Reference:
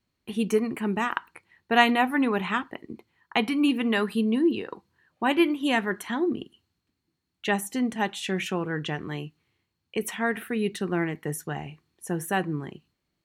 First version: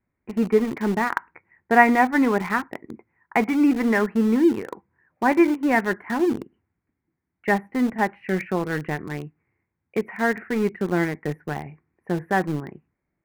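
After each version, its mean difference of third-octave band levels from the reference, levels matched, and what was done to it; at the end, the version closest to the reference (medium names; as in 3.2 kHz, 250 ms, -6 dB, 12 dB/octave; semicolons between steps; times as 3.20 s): 6.0 dB: elliptic low-pass 2.2 kHz, stop band 40 dB; peaking EQ 1.2 kHz -4.5 dB 0.21 oct; in parallel at -6 dB: small samples zeroed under -27.5 dBFS; on the sum: trim +2 dB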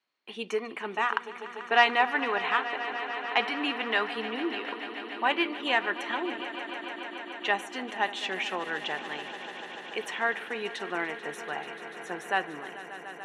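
9.5 dB: saturation -8.5 dBFS, distortion -24 dB; band-pass 620–4400 Hz; on a send: echo with a slow build-up 146 ms, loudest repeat 5, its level -16 dB; on the sum: trim +1.5 dB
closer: first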